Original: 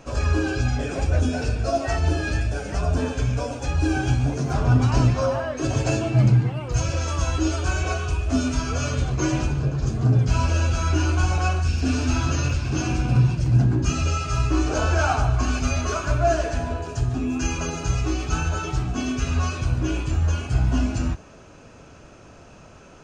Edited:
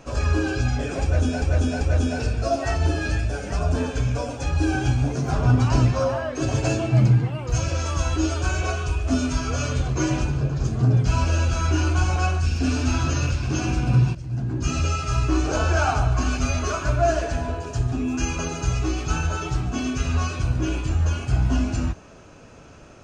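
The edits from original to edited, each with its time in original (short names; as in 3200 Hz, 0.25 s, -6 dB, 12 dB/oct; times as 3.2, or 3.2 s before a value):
1.03–1.42 loop, 3 plays
13.37–13.96 fade in quadratic, from -13 dB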